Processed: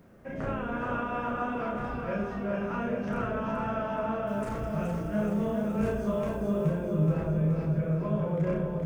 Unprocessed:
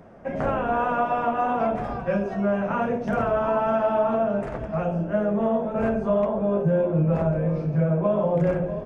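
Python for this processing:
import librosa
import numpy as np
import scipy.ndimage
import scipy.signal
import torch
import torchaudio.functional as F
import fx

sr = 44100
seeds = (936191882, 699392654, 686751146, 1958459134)

y = fx.peak_eq(x, sr, hz=730.0, db=-9.5, octaves=0.94)
y = fx.doubler(y, sr, ms=33.0, db=-3)
y = fx.quant_dither(y, sr, seeds[0], bits=12, dither='triangular')
y = fx.bass_treble(y, sr, bass_db=3, treble_db=14, at=(4.27, 6.7))
y = fx.echo_feedback(y, sr, ms=424, feedback_pct=58, wet_db=-5)
y = F.gain(torch.from_numpy(y), -6.5).numpy()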